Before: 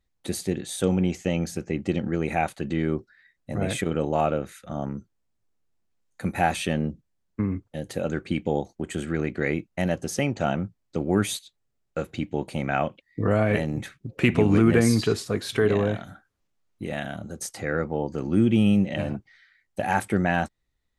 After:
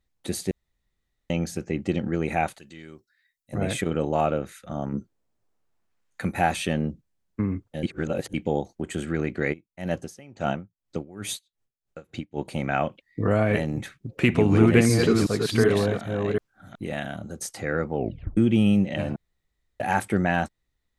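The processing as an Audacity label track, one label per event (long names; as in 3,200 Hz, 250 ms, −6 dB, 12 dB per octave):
0.510000	1.300000	fill with room tone
2.580000	3.530000	first-order pre-emphasis coefficient 0.9
4.920000	6.250000	parametric band 290 Hz → 2,200 Hz +7.5 dB 2.3 octaves
7.830000	8.340000	reverse
9.520000	12.440000	tremolo with a sine in dB 1.4 Hz → 4.6 Hz, depth 23 dB
14.150000	16.950000	delay that plays each chunk backwards 372 ms, level −3.5 dB
17.960000	17.960000	tape stop 0.41 s
19.160000	19.800000	fill with room tone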